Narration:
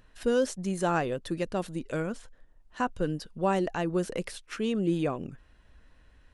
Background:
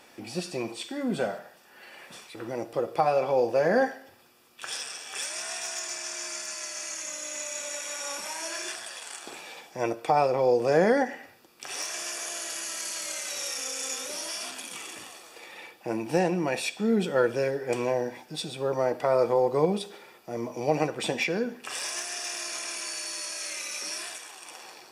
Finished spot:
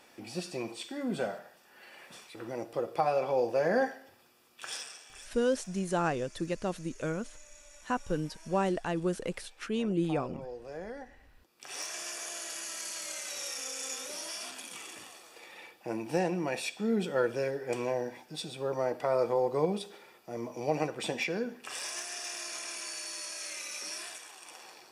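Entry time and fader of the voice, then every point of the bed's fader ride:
5.10 s, -2.5 dB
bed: 4.76 s -4.5 dB
5.36 s -20.5 dB
11.11 s -20.5 dB
11.77 s -5 dB

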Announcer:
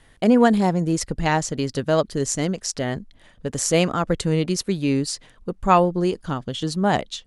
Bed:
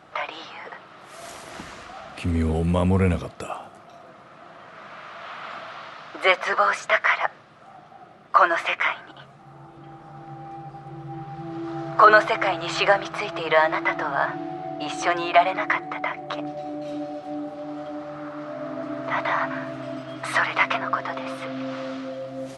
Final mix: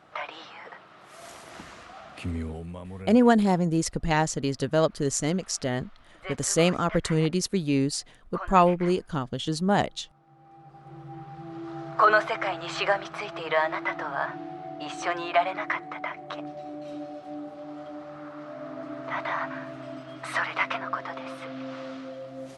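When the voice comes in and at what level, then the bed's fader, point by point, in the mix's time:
2.85 s, -3.0 dB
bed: 2.23 s -5.5 dB
2.84 s -20 dB
10.23 s -20 dB
10.94 s -6 dB

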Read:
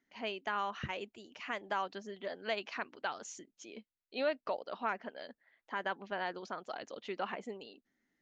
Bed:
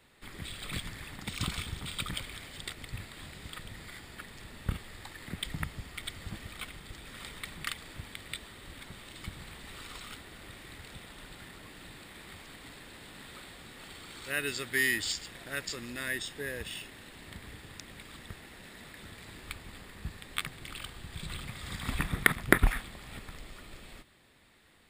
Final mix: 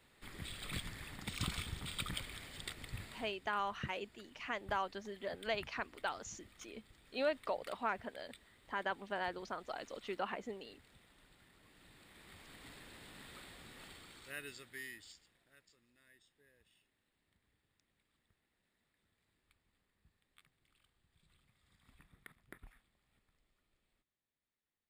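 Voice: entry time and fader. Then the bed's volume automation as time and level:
3.00 s, -1.5 dB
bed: 3.14 s -5 dB
3.40 s -18 dB
11.49 s -18 dB
12.67 s -6 dB
13.83 s -6 dB
15.75 s -33 dB

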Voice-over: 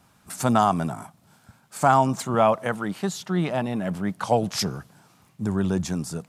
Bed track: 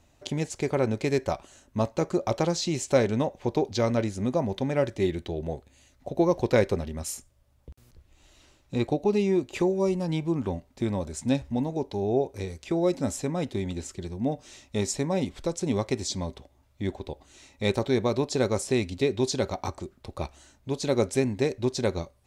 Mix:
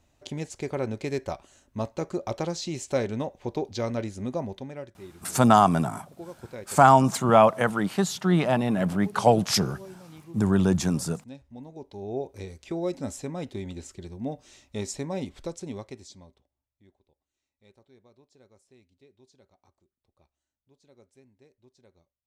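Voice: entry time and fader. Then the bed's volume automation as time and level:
4.95 s, +2.5 dB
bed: 4.43 s -4.5 dB
4.99 s -19 dB
11.36 s -19 dB
12.30 s -5 dB
15.44 s -5 dB
17.05 s -33.5 dB

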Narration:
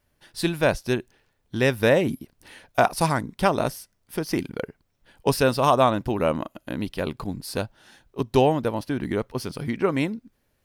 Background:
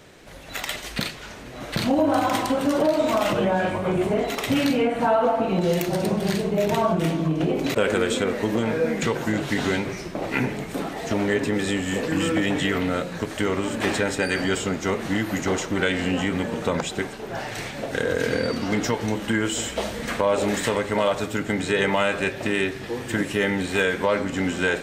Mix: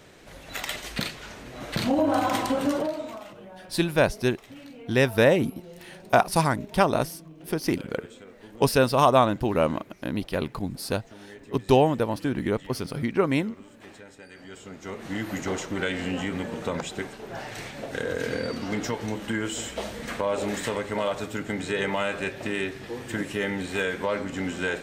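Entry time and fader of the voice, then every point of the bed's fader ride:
3.35 s, 0.0 dB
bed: 2.69 s -2.5 dB
3.35 s -23.5 dB
14.34 s -23.5 dB
15.24 s -5.5 dB

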